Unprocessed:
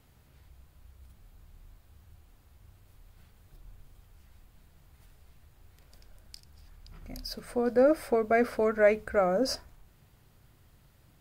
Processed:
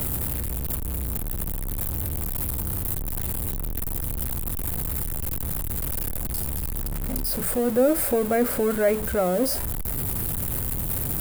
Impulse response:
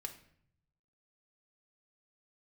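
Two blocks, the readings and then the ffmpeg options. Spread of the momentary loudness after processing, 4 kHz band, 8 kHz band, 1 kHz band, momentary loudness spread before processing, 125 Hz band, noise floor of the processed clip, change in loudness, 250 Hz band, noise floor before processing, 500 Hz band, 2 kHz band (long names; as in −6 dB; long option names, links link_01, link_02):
7 LU, +4.5 dB, +19.5 dB, +2.0 dB, 16 LU, +19.5 dB, −28 dBFS, +1.5 dB, +7.0 dB, −61 dBFS, +2.5 dB, +1.0 dB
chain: -filter_complex "[0:a]aeval=exprs='val(0)+0.5*0.0422*sgn(val(0))':channel_layout=same,tiltshelf=frequency=650:gain=4.5,acrossover=split=400|1300|1900[link_01][link_02][link_03][link_04];[link_02]acompressor=mode=upward:threshold=-40dB:ratio=2.5[link_05];[link_04]aexciter=amount=6.1:drive=4.8:freq=8100[link_06];[link_01][link_05][link_03][link_06]amix=inputs=4:normalize=0,bandreject=frequency=650:width=20"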